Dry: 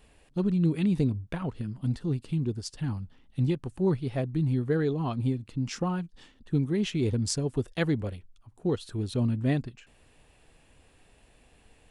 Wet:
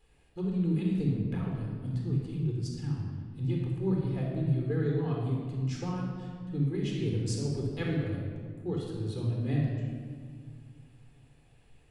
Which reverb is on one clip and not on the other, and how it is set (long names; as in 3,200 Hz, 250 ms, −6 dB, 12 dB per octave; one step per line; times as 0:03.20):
rectangular room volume 2,800 cubic metres, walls mixed, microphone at 4 metres
level −11.5 dB